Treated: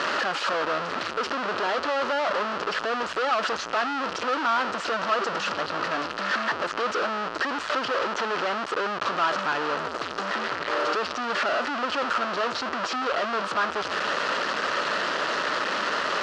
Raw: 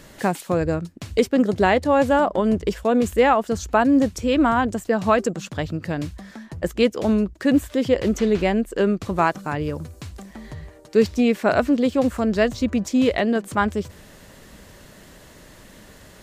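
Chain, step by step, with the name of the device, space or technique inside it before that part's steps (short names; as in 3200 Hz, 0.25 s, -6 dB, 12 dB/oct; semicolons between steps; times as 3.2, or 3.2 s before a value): home computer beeper (infinite clipping; speaker cabinet 560–4200 Hz, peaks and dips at 770 Hz -4 dB, 1300 Hz +8 dB, 2200 Hz -7 dB, 3600 Hz -6 dB)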